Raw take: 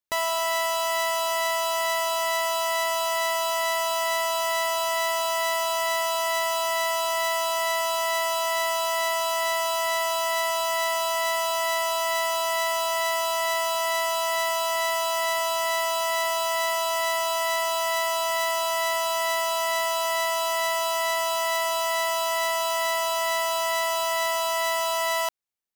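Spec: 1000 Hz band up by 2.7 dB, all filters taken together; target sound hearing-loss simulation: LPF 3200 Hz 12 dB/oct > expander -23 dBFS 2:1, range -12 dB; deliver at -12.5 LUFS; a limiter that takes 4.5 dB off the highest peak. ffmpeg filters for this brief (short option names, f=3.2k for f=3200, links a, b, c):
-af "equalizer=f=1k:t=o:g=3,alimiter=limit=-21.5dB:level=0:latency=1,lowpass=3.2k,agate=range=-12dB:threshold=-23dB:ratio=2,volume=18dB"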